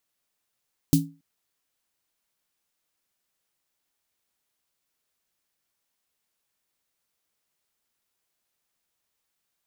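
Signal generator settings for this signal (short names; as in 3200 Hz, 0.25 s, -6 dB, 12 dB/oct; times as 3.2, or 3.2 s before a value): snare drum length 0.28 s, tones 160 Hz, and 280 Hz, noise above 3600 Hz, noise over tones -8 dB, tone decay 0.31 s, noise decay 0.17 s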